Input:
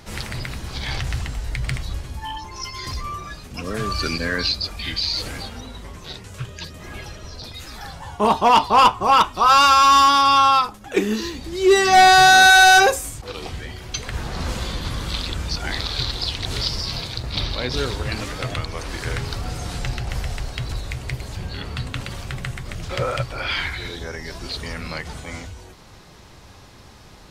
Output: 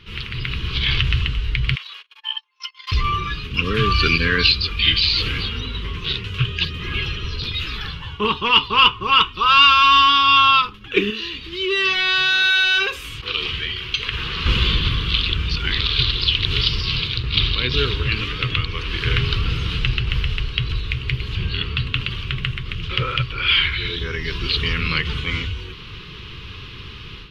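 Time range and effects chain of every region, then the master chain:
1.75–2.92 s: gate -30 dBFS, range -37 dB + inverse Chebyshev high-pass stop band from 200 Hz, stop band 60 dB
11.10–14.46 s: bass shelf 410 Hz -10 dB + compression 2.5:1, threshold -30 dBFS
whole clip: FFT filter 150 Hz 0 dB, 250 Hz -7 dB, 440 Hz -2 dB, 680 Hz -29 dB, 1.1 kHz -2 dB, 1.9 kHz -3 dB, 2.9 kHz +11 dB, 7.9 kHz -25 dB, 13 kHz -18 dB; level rider gain up to 11.5 dB; trim -1 dB

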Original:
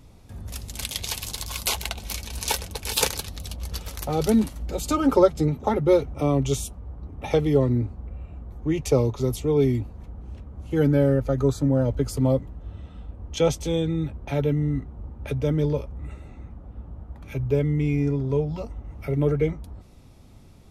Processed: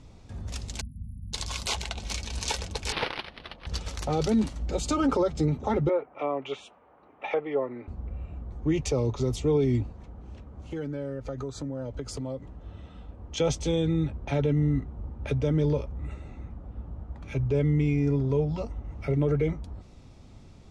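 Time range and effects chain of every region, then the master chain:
0.81–1.33 s: brick-wall FIR band-stop 260–9700 Hz + distance through air 120 m
2.92–3.67 s: high-pass 600 Hz 6 dB/octave + frequency shift -19 Hz + decimation joined by straight lines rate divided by 6×
5.89–7.88 s: high-pass 600 Hz + resonant high shelf 3.7 kHz -12 dB, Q 1.5 + low-pass that closes with the level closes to 1.3 kHz, closed at -24 dBFS
9.92–13.38 s: bass shelf 180 Hz -6.5 dB + compression 5:1, threshold -31 dBFS
whole clip: low-pass 7.9 kHz 24 dB/octave; peak limiter -16.5 dBFS

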